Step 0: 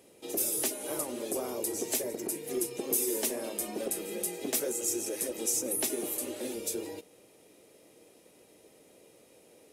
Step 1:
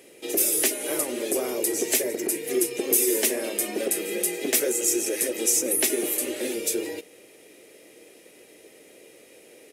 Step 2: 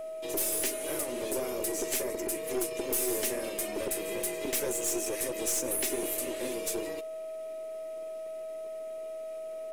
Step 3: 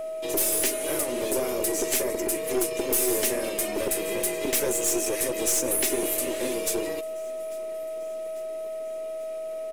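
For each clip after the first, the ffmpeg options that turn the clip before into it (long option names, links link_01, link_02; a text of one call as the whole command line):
ffmpeg -i in.wav -af "firequalizer=gain_entry='entry(130,0);entry(360,9);entry(960,2);entry(1900,14);entry(3800,8)':delay=0.05:min_phase=1" out.wav
ffmpeg -i in.wav -af "aeval=exprs='val(0)+0.0316*sin(2*PI*640*n/s)':channel_layout=same,aeval=exprs='(tanh(10*val(0)+0.45)-tanh(0.45))/10':channel_layout=same,volume=-4.5dB" out.wav
ffmpeg -i in.wav -af "aecho=1:1:845|1690|2535|3380:0.0668|0.0368|0.0202|0.0111,volume=6dB" out.wav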